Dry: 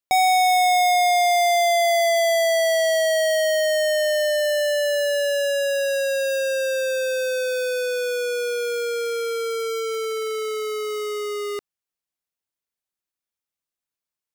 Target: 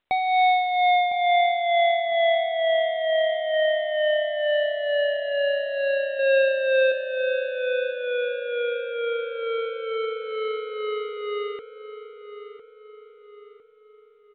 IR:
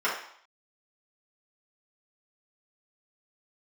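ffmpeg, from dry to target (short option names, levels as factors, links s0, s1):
-filter_complex "[0:a]asettb=1/sr,asplit=3[s0][s1][s2];[s0]atrim=end=2.344[s3];[s1]atrim=start=2.34:end=3.54,asetpts=PTS-STARTPTS,afade=t=in:d=0.004:c=qsin,afade=t=out:st=1.196:d=0.004:c=qsin,equalizer=f=1400:t=o:w=0.44:g=-14[s4];[s2]atrim=start=3.536[s5];[s3][s4]acrossfade=d=0.004:c1=hsin:c2=qsin[s6];[s6][s5]acrossfade=d=0.004:c1=qsin:c2=hsin,asettb=1/sr,asplit=3[s7][s8][s9];[s7]atrim=end=6.194[s10];[s8]atrim=start=6.19:end=6.92,asetpts=PTS-STARTPTS,afade=t=in:d=0.004:c=qsin,afade=t=out:st=0.726:d=0.004:c=qsin,acontrast=37[s11];[s9]atrim=start=6.916[s12];[s10][s11]acrossfade=d=0.004:c1=hsin:c2=qsin[s13];[s13][s12]acrossfade=d=0.004:c1=qsin:c2=hsin,tremolo=f=2.2:d=0.58,asplit=2[s14][s15];[s15]adelay=1005,lowpass=f=2600:p=1,volume=0.266,asplit=2[s16][s17];[s17]adelay=1005,lowpass=f=2600:p=1,volume=0.47,asplit=2[s18][s19];[s19]adelay=1005,lowpass=f=2600:p=1,volume=0.47,asplit=2[s20][s21];[s21]adelay=1005,lowpass=f=2600:p=1,volume=0.47,asplit=2[s22][s23];[s23]adelay=1005,lowpass=f=2600:p=1,volume=0.47[s24];[s14][s16][s18][s20][s22][s24]amix=inputs=6:normalize=0" -ar 8000 -c:a pcm_mulaw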